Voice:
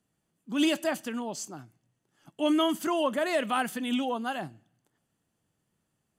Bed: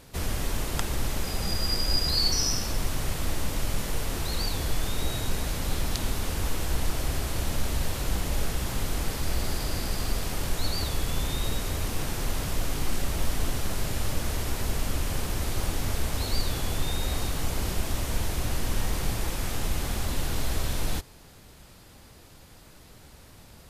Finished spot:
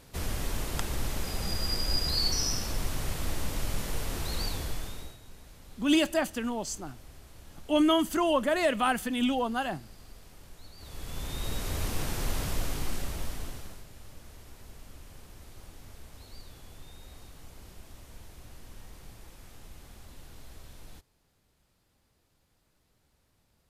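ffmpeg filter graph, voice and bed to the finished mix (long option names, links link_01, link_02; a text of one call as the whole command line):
ffmpeg -i stem1.wav -i stem2.wav -filter_complex "[0:a]adelay=5300,volume=1.5dB[link_01];[1:a]volume=16.5dB,afade=type=out:start_time=4.46:duration=0.71:silence=0.11885,afade=type=in:start_time=10.77:duration=1.06:silence=0.1,afade=type=out:start_time=12.46:duration=1.39:silence=0.11885[link_02];[link_01][link_02]amix=inputs=2:normalize=0" out.wav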